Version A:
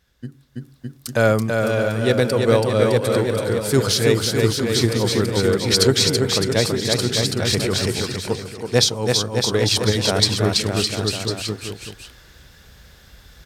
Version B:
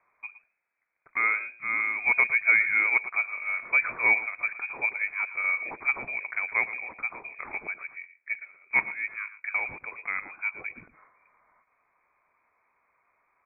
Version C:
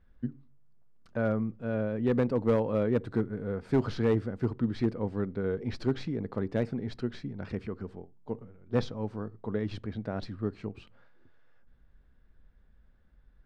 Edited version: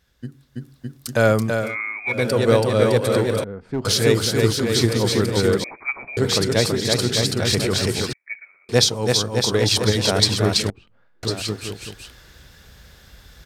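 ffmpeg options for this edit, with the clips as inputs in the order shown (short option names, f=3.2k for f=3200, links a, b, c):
-filter_complex "[1:a]asplit=3[a][b][c];[2:a]asplit=2[d][e];[0:a]asplit=6[f][g][h][i][j][k];[f]atrim=end=1.77[l];[a]atrim=start=1.53:end=2.3[m];[g]atrim=start=2.06:end=3.442[n];[d]atrim=start=3.438:end=3.852[o];[h]atrim=start=3.848:end=5.642[p];[b]atrim=start=5.638:end=6.172[q];[i]atrim=start=6.168:end=8.132[r];[c]atrim=start=8.128:end=8.692[s];[j]atrim=start=8.688:end=10.702[t];[e]atrim=start=10.698:end=11.232[u];[k]atrim=start=11.228[v];[l][m]acrossfade=d=0.24:c1=tri:c2=tri[w];[w][n]acrossfade=d=0.24:c1=tri:c2=tri[x];[x][o]acrossfade=d=0.004:c1=hsin:c2=hsin[y];[y][p]acrossfade=d=0.004:c1=hsin:c2=hsin[z];[z][q]acrossfade=d=0.004:c1=hsin:c2=hsin[aa];[aa][r]acrossfade=d=0.004:c1=hsin:c2=hsin[ab];[ab][s]acrossfade=d=0.004:c1=hsin:c2=hsin[ac];[ac][t]acrossfade=d=0.004:c1=hsin:c2=hsin[ad];[ad][u]acrossfade=d=0.004:c1=hsin:c2=hsin[ae];[ae][v]acrossfade=d=0.004:c1=hsin:c2=hsin"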